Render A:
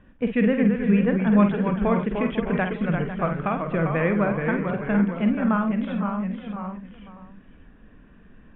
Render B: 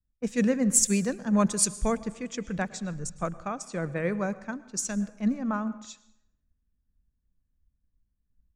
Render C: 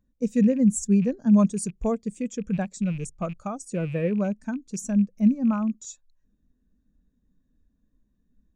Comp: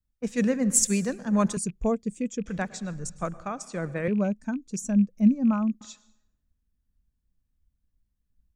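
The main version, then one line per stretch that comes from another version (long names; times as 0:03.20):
B
0:01.57–0:02.46: punch in from C
0:04.08–0:05.81: punch in from C
not used: A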